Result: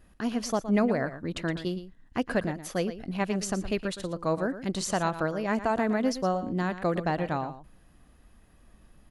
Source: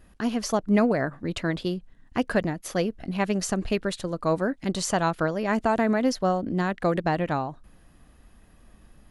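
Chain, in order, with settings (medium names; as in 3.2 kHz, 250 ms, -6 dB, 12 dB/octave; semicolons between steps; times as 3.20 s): delay 116 ms -12.5 dB; trim -3.5 dB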